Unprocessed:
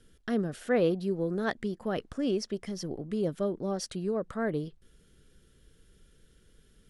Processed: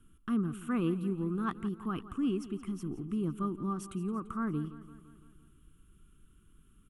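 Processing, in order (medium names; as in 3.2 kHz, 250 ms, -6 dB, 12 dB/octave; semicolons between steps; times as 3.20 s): FFT filter 330 Hz 0 dB, 570 Hz -26 dB, 1.2 kHz +8 dB, 1.8 kHz -15 dB, 2.7 kHz -2 dB, 4.7 kHz -23 dB, 7.8 kHz -5 dB, 11 kHz -1 dB; on a send: feedback delay 170 ms, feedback 59%, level -15.5 dB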